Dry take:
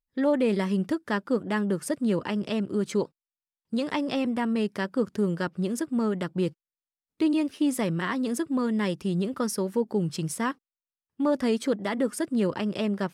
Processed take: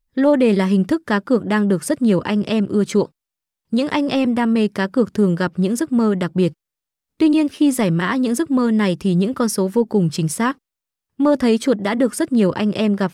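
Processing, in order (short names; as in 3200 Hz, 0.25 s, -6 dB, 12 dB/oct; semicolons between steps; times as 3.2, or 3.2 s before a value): low shelf 93 Hz +9 dB; gain +8.5 dB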